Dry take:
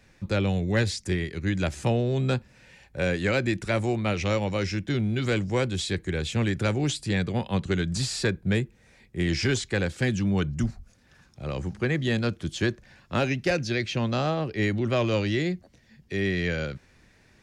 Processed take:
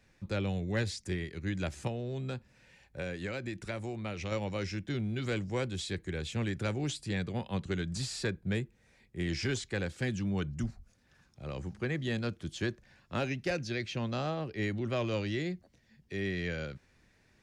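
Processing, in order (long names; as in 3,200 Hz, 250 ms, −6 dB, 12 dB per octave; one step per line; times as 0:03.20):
0:01.87–0:04.32: downward compressor, threshold −26 dBFS, peak gain reduction 6.5 dB
level −8 dB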